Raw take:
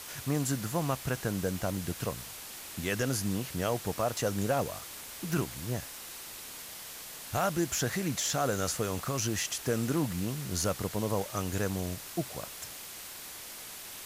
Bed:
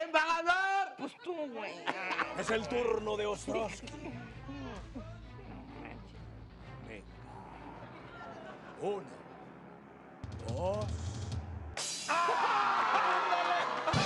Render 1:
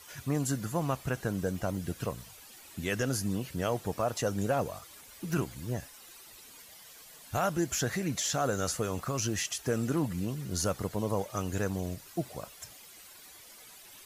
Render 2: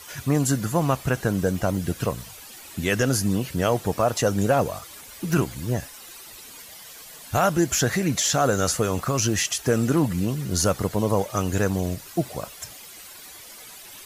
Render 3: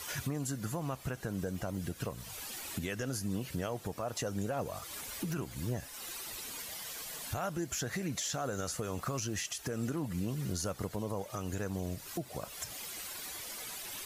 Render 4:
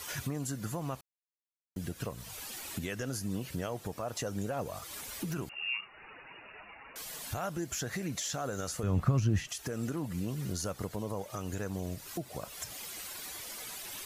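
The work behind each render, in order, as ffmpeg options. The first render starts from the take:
ffmpeg -i in.wav -af "afftdn=noise_reduction=12:noise_floor=-45" out.wav
ffmpeg -i in.wav -af "volume=9dB" out.wav
ffmpeg -i in.wav -af "acompressor=threshold=-36dB:ratio=2.5,alimiter=level_in=2dB:limit=-24dB:level=0:latency=1:release=185,volume=-2dB" out.wav
ffmpeg -i in.wav -filter_complex "[0:a]asettb=1/sr,asplit=3[link_01][link_02][link_03];[link_01]atrim=end=5.494[link_04];[link_02]atrim=start=5.49:end=6.96,asetpts=PTS-STARTPTS,afade=type=in:duration=0.004:curve=qsin,afade=type=out:start_time=1.466:duration=0.004:curve=qsin,lowpass=frequency=2500:width_type=q:width=0.5098,lowpass=frequency=2500:width_type=q:width=0.6013,lowpass=frequency=2500:width_type=q:width=0.9,lowpass=frequency=2500:width_type=q:width=2.563,afreqshift=-2900[link_05];[link_03]atrim=start=6.956[link_06];[link_04][link_05]acrossfade=duration=0.004:curve1=hsin:curve2=qsin[link_07];[link_07][link_06]acrossfade=duration=0.004:curve1=qsin:curve2=hsin,asettb=1/sr,asplit=3[link_08][link_09][link_10];[link_08]atrim=end=8.834[link_11];[link_09]atrim=start=8.83:end=9.49,asetpts=PTS-STARTPTS,afade=type=in:duration=0.004:curve=qsin,afade=type=out:start_time=0.656:duration=0.004:curve=qsin,bass=frequency=250:gain=14,treble=frequency=4000:gain=-10[link_12];[link_10]atrim=start=9.486[link_13];[link_11][link_12]acrossfade=duration=0.004:curve1=hsin:curve2=qsin[link_14];[link_14][link_13]acrossfade=duration=0.004:curve1=qsin:curve2=hsin,asplit=3[link_15][link_16][link_17];[link_15]atrim=end=1.01,asetpts=PTS-STARTPTS,afade=type=out:start_time=1.006:duration=0.004:curve=hsin[link_18];[link_16]atrim=start=1.01:end=1.76,asetpts=PTS-STARTPTS,volume=0[link_19];[link_17]atrim=start=1.76,asetpts=PTS-STARTPTS,afade=type=in:duration=0.004:curve=hsin[link_20];[link_18][link_19][link_20]concat=n=3:v=0:a=1" out.wav

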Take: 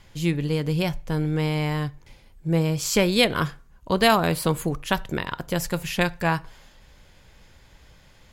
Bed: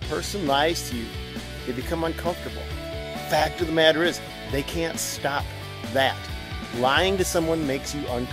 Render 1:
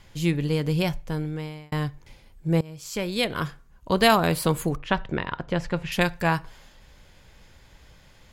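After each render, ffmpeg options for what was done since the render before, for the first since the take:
ffmpeg -i in.wav -filter_complex "[0:a]asettb=1/sr,asplit=3[link_01][link_02][link_03];[link_01]atrim=end=4.764[link_04];[link_02]atrim=start=4.76:end=5.92,asetpts=PTS-STARTPTS,afade=type=in:duration=0.004:curve=qsin,afade=type=out:start_time=1.156:duration=0.004:curve=qsin,lowpass=3000[link_05];[link_03]atrim=start=5.916[link_06];[link_04][link_05]acrossfade=duration=0.004:curve1=hsin:curve2=qsin[link_07];[link_07][link_06]acrossfade=duration=0.004:curve1=qsin:curve2=hsin,asplit=3[link_08][link_09][link_10];[link_08]atrim=end=1.72,asetpts=PTS-STARTPTS,afade=type=out:start_time=0.88:duration=0.84[link_11];[link_09]atrim=start=1.72:end=2.61,asetpts=PTS-STARTPTS,afade=type=in:duration=0.004:curve=hsin,afade=type=out:start_time=0.886:duration=0.004:curve=hsin:silence=0.0841395[link_12];[link_10]atrim=start=2.61,asetpts=PTS-STARTPTS,afade=type=in:duration=1.33:silence=0.0841395[link_13];[link_11][link_12][link_13]concat=n=3:v=0:a=1" out.wav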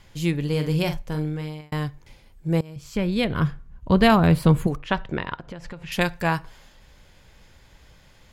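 ffmpeg -i in.wav -filter_complex "[0:a]asettb=1/sr,asplit=3[link_01][link_02][link_03];[link_01]atrim=end=0.494[link_04];[link_02]atrim=start=0.49:end=1.61,asetpts=PTS-STARTPTS,afade=type=in:duration=0.004:curve=qsin,afade=type=out:start_time=1.116:duration=0.004:curve=qsin,asplit=2[link_05][link_06];[link_06]adelay=46,volume=-7.5dB[link_07];[link_05][link_07]amix=inputs=2:normalize=0,atrim=end_sample=49392[link_08];[link_03]atrim=start=1.606[link_09];[link_04][link_08]acrossfade=duration=0.004:curve1=hsin:curve2=qsin[link_10];[link_10][link_09]acrossfade=duration=0.004:curve1=qsin:curve2=hsin,asettb=1/sr,asplit=3[link_11][link_12][link_13];[link_11]atrim=end=2.764[link_14];[link_12]atrim=start=2.76:end=4.67,asetpts=PTS-STARTPTS,afade=type=in:duration=0.004:curve=qsin,afade=type=out:start_time=1.906:duration=0.004:curve=qsin,bass=frequency=250:gain=11,treble=frequency=4000:gain=-9[link_15];[link_13]atrim=start=4.666[link_16];[link_14][link_15]acrossfade=duration=0.004:curve1=hsin:curve2=qsin[link_17];[link_17][link_16]acrossfade=duration=0.004:curve1=qsin:curve2=hsin,asplit=3[link_18][link_19][link_20];[link_18]afade=type=out:start_time=5.35:duration=0.02[link_21];[link_19]acompressor=threshold=-32dB:ratio=10:attack=3.2:release=140:knee=1:detection=peak,afade=type=in:start_time=5.35:duration=0.02,afade=type=out:start_time=5.9:duration=0.02[link_22];[link_20]afade=type=in:start_time=5.9:duration=0.02[link_23];[link_21][link_22][link_23]amix=inputs=3:normalize=0" out.wav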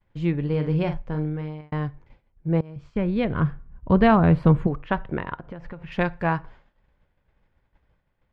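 ffmpeg -i in.wav -af "lowpass=1800,agate=range=-33dB:threshold=-41dB:ratio=3:detection=peak" out.wav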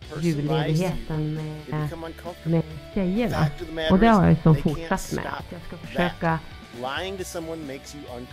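ffmpeg -i in.wav -i bed.wav -filter_complex "[1:a]volume=-9dB[link_01];[0:a][link_01]amix=inputs=2:normalize=0" out.wav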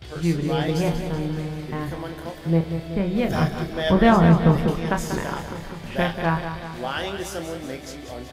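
ffmpeg -i in.wav -filter_complex "[0:a]asplit=2[link_01][link_02];[link_02]adelay=30,volume=-7.5dB[link_03];[link_01][link_03]amix=inputs=2:normalize=0,aecho=1:1:189|378|567|756|945|1134|1323:0.355|0.206|0.119|0.0692|0.0402|0.0233|0.0135" out.wav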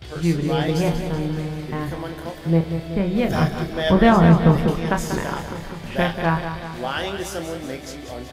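ffmpeg -i in.wav -af "volume=2dB,alimiter=limit=-3dB:level=0:latency=1" out.wav

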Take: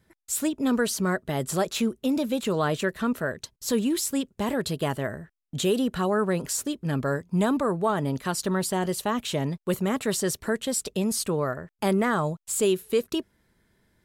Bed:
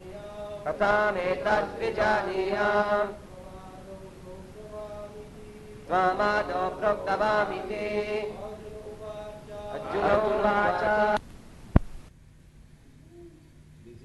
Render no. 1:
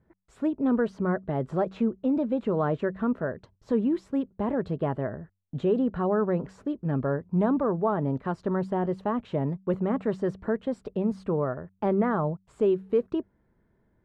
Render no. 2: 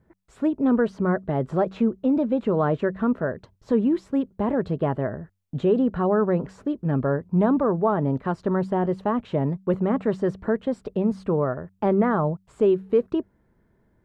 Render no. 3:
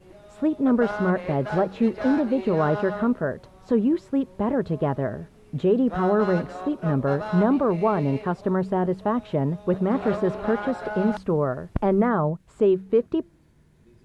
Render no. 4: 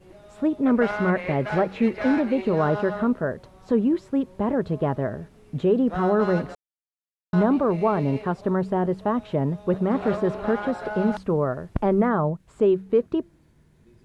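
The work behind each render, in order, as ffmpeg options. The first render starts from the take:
ffmpeg -i in.wav -af "lowpass=1100,bandreject=frequency=95.21:width_type=h:width=4,bandreject=frequency=190.42:width_type=h:width=4" out.wav
ffmpeg -i in.wav -af "volume=4dB" out.wav
ffmpeg -i in.wav -i bed.wav -filter_complex "[1:a]volume=-7.5dB[link_01];[0:a][link_01]amix=inputs=2:normalize=0" out.wav
ffmpeg -i in.wav -filter_complex "[0:a]asettb=1/sr,asplit=3[link_01][link_02][link_03];[link_01]atrim=end=0.634[link_04];[link_02]atrim=start=0.63:end=2.42,asetpts=PTS-STARTPTS,afade=type=in:duration=0.004:curve=qsin,afade=type=out:start_time=1.786:duration=0.004:curve=qsin,equalizer=frequency=2200:width_type=o:width=0.67:gain=9.5[link_05];[link_03]atrim=start=2.416[link_06];[link_04][link_05]acrossfade=duration=0.004:curve1=hsin:curve2=qsin[link_07];[link_07][link_06]acrossfade=duration=0.004:curve1=qsin:curve2=hsin,asplit=3[link_08][link_09][link_10];[link_08]atrim=end=6.55,asetpts=PTS-STARTPTS,afade=type=out:start_time=6.546:duration=0.004:curve=hsin[link_11];[link_09]atrim=start=6.55:end=7.33,asetpts=PTS-STARTPTS,volume=0[link_12];[link_10]atrim=start=7.33,asetpts=PTS-STARTPTS,afade=type=in:duration=0.004:curve=hsin[link_13];[link_11][link_12][link_13]concat=n=3:v=0:a=1" out.wav

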